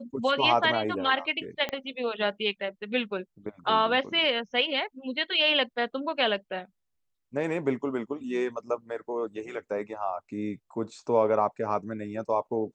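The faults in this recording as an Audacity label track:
1.690000	1.690000	click −16 dBFS

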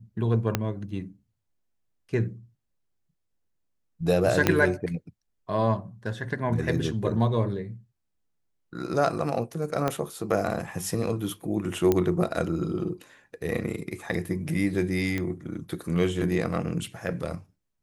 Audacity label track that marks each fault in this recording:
0.550000	0.550000	click −8 dBFS
4.470000	4.470000	click −5 dBFS
9.880000	9.880000	click −12 dBFS
11.920000	11.920000	click −10 dBFS
15.180000	15.180000	click −16 dBFS

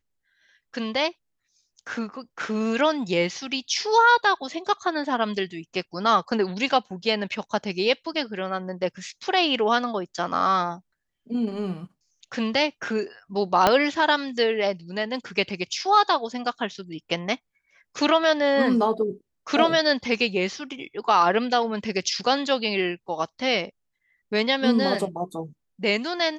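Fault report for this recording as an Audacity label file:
13.670000	13.670000	click −4 dBFS

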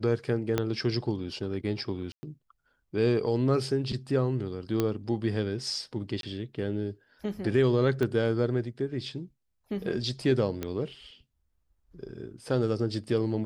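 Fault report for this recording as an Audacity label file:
0.580000	0.580000	click −12 dBFS
2.120000	2.230000	drop-out 110 ms
4.800000	4.800000	click −13 dBFS
6.210000	6.230000	drop-out 22 ms
8.030000	8.030000	click −17 dBFS
10.630000	10.630000	click −18 dBFS

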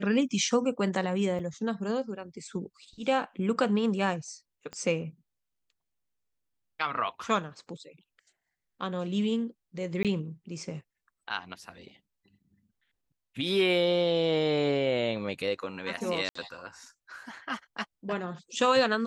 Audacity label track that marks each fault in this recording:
1.390000	1.390000	drop-out 4.6 ms
4.730000	4.730000	click −26 dBFS
10.030000	10.050000	drop-out 17 ms
16.290000	16.350000	drop-out 64 ms

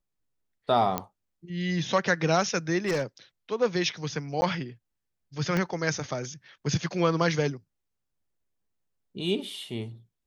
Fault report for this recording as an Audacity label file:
0.980000	0.980000	click −12 dBFS
2.780000	3.030000	clipping −22 dBFS
4.410000	4.420000	drop-out 10 ms
5.570000	5.570000	click −15 dBFS

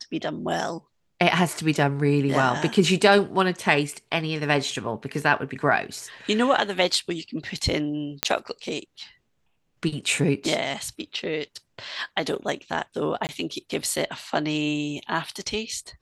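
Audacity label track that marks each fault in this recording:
8.230000	8.230000	click −2 dBFS
13.270000	13.290000	drop-out 19 ms

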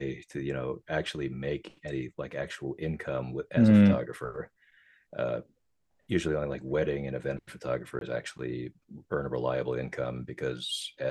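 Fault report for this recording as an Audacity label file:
7.990000	8.010000	drop-out 22 ms

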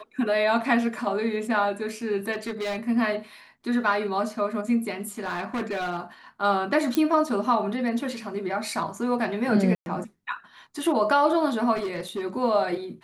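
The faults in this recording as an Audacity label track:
2.320000	2.880000	clipping −26 dBFS
5.010000	6.010000	clipping −25 dBFS
6.950000	6.950000	click −10 dBFS
9.750000	9.860000	drop-out 111 ms
11.750000	12.220000	clipping −25.5 dBFS

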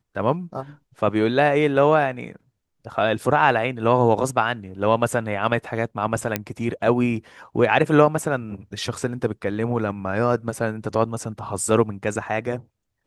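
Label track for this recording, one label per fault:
6.360000	6.360000	click −6 dBFS

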